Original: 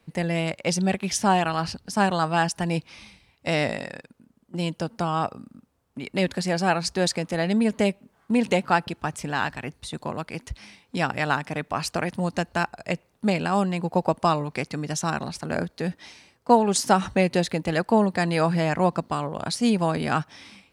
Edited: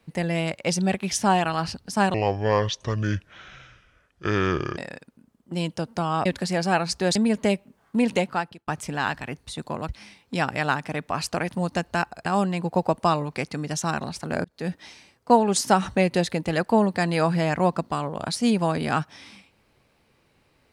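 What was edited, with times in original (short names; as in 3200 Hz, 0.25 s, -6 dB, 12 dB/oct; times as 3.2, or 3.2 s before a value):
2.14–3.8 speed 63%
5.28–6.21 cut
7.11–7.51 cut
8.48–9.03 fade out
10.24–10.5 cut
12.87–13.45 cut
15.64–15.89 fade in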